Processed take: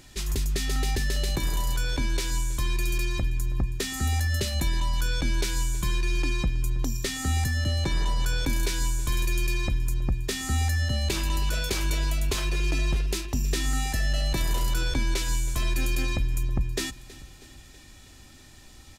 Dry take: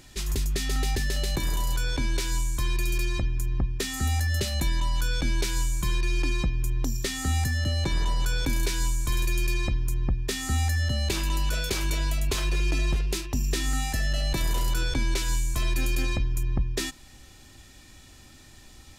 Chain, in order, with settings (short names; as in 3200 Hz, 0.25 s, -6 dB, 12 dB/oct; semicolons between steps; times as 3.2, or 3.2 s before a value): feedback echo 0.322 s, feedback 58%, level -19 dB